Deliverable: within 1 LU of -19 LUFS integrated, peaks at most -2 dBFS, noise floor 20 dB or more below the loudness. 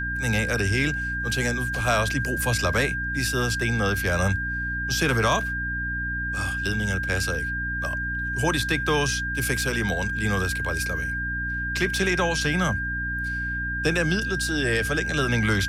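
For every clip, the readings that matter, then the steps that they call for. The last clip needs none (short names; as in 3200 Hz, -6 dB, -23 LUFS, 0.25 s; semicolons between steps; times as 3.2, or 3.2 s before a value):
hum 60 Hz; harmonics up to 300 Hz; hum level -30 dBFS; steady tone 1600 Hz; tone level -27 dBFS; loudness -24.5 LUFS; peak -9.5 dBFS; loudness target -19.0 LUFS
-> de-hum 60 Hz, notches 5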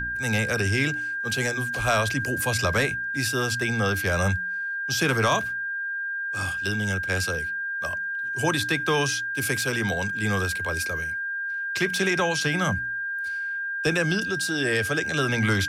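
hum none; steady tone 1600 Hz; tone level -27 dBFS
-> notch 1600 Hz, Q 30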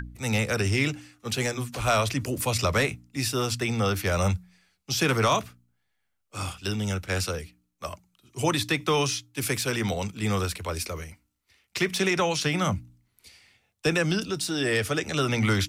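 steady tone none; loudness -26.5 LUFS; peak -11.0 dBFS; loudness target -19.0 LUFS
-> gain +7.5 dB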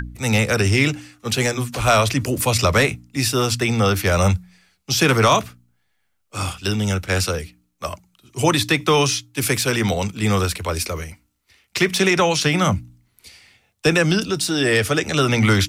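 loudness -19.0 LUFS; peak -3.5 dBFS; noise floor -68 dBFS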